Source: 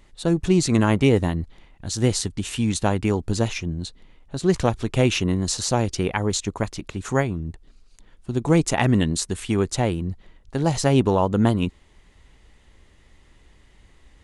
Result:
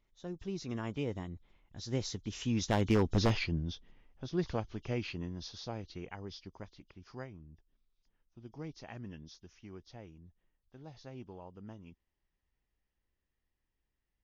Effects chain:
hearing-aid frequency compression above 2,900 Hz 1.5 to 1
source passing by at 0:03.18, 17 m/s, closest 6.4 metres
wave folding −15 dBFS
level −3.5 dB

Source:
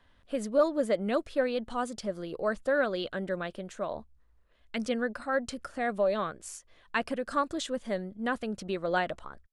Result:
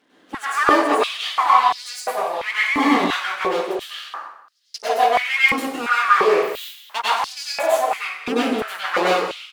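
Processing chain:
full-wave rectification
single-tap delay 186 ms −15.5 dB
dense smooth reverb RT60 0.78 s, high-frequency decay 0.8×, pre-delay 85 ms, DRR −8.5 dB
high-pass on a step sequencer 2.9 Hz 280–4,900 Hz
level +4 dB

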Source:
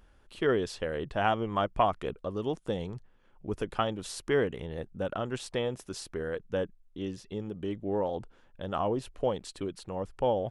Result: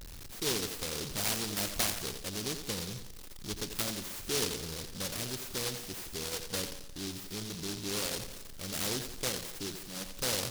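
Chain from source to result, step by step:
converter with a step at zero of −33 dBFS
0:09.79–0:10.19: phaser with its sweep stopped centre 400 Hz, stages 6
on a send: feedback echo with a high-pass in the loop 86 ms, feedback 55%, high-pass 150 Hz, level −8 dB
on the sum: short delay modulated by noise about 4,400 Hz, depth 0.39 ms
level −7.5 dB

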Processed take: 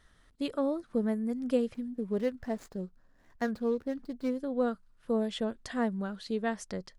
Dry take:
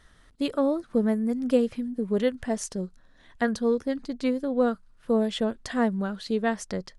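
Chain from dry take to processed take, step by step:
0:01.74–0:04.37: running median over 15 samples
level −6 dB

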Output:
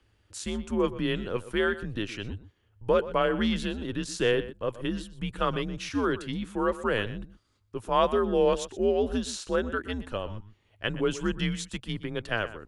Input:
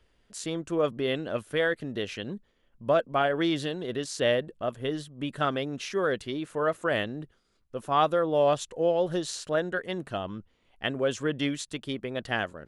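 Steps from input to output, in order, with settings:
slap from a distant wall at 21 metres, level −15 dB
frequency shifter −110 Hz

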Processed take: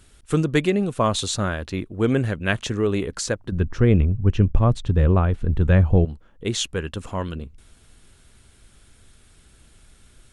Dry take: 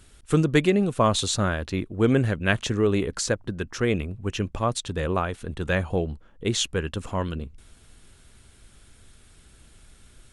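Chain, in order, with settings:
0:03.52–0:06.05: RIAA equalisation playback

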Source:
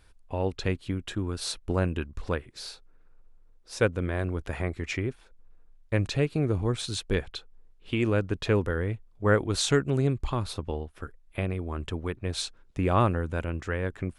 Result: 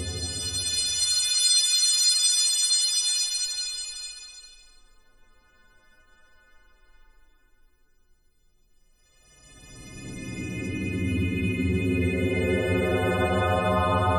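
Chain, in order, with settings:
every partial snapped to a pitch grid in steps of 3 semitones
extreme stretch with random phases 23×, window 0.10 s, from 0:12.32

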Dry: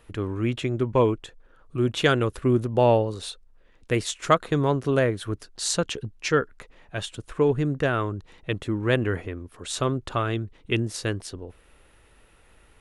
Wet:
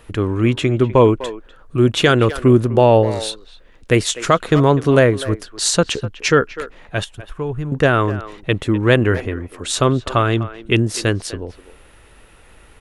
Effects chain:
0:07.04–0:07.72: graphic EQ with 10 bands 125 Hz −4 dB, 250 Hz −12 dB, 500 Hz −11 dB, 1,000 Hz −5 dB, 2,000 Hz −9 dB, 4,000 Hz −10 dB, 8,000 Hz −12 dB
far-end echo of a speakerphone 250 ms, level −15 dB
boost into a limiter +10.5 dB
level −1 dB

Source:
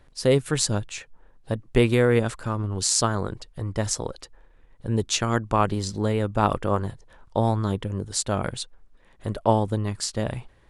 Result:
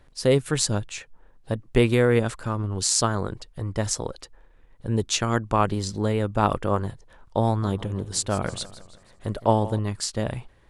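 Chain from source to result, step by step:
0:07.46–0:09.79: feedback echo with a swinging delay time 162 ms, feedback 50%, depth 134 cents, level −16 dB

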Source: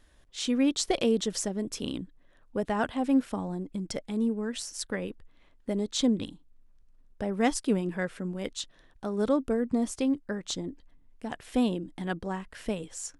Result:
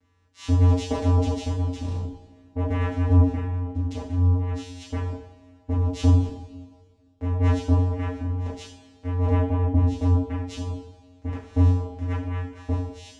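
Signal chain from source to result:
channel vocoder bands 4, square 89.8 Hz
coupled-rooms reverb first 0.52 s, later 1.9 s, from −16 dB, DRR −7 dB

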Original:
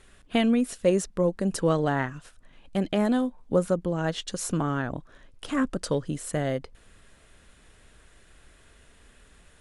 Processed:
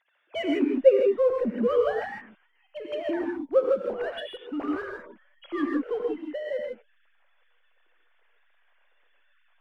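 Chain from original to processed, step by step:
three sine waves on the formant tracks
in parallel at −5.5 dB: slack as between gear wheels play −25.5 dBFS
on the sum: reverb whose tail is shaped and stops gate 180 ms rising, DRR 0.5 dB
level −5.5 dB

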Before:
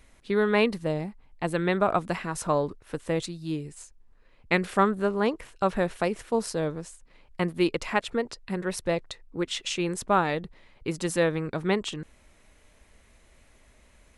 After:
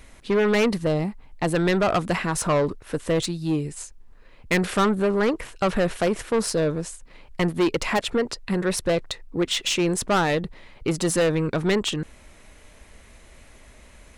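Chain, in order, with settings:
soft clipping −25 dBFS, distortion −7 dB
level +9 dB

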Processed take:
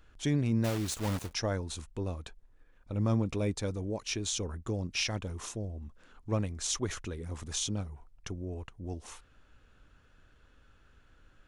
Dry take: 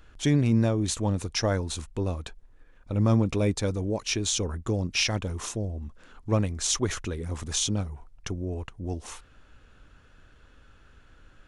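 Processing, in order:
0:00.64–0:01.34: one scale factor per block 3 bits
level −6.5 dB

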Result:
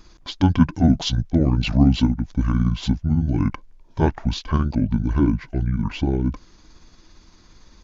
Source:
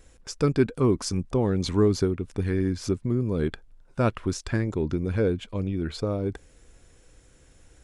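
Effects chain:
pitch shift by two crossfaded delay taps −7.5 semitones
level +7 dB

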